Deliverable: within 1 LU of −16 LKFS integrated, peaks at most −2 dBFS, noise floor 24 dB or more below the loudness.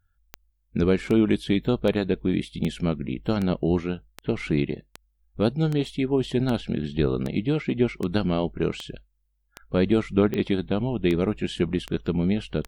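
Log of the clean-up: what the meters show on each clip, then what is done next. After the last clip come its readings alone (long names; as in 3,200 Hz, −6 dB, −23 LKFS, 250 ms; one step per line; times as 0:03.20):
number of clicks 17; integrated loudness −25.5 LKFS; sample peak −7.5 dBFS; target loudness −16.0 LKFS
→ click removal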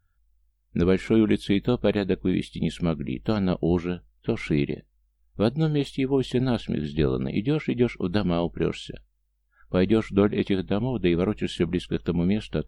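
number of clicks 0; integrated loudness −25.5 LKFS; sample peak −7.5 dBFS; target loudness −16.0 LKFS
→ level +9.5 dB
brickwall limiter −2 dBFS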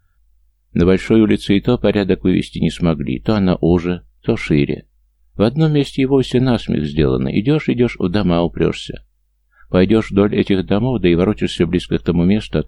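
integrated loudness −16.5 LKFS; sample peak −2.0 dBFS; background noise floor −61 dBFS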